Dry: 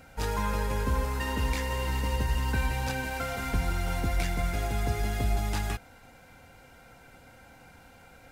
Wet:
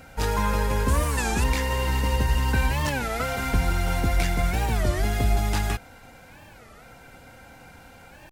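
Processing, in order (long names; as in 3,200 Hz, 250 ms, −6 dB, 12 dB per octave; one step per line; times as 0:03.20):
0:00.88–0:01.44: parametric band 8,300 Hz +11 dB 0.86 octaves
wow of a warped record 33 1/3 rpm, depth 250 cents
level +5.5 dB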